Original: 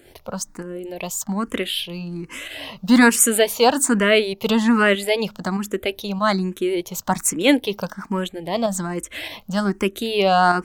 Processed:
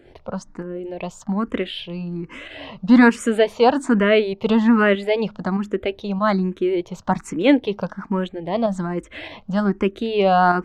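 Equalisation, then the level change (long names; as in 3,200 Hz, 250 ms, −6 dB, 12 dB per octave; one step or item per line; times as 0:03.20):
head-to-tape spacing loss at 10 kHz 27 dB
+2.5 dB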